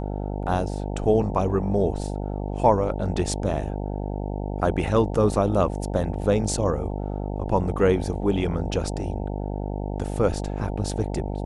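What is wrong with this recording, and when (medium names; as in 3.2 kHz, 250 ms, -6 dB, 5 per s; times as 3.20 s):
buzz 50 Hz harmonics 18 -29 dBFS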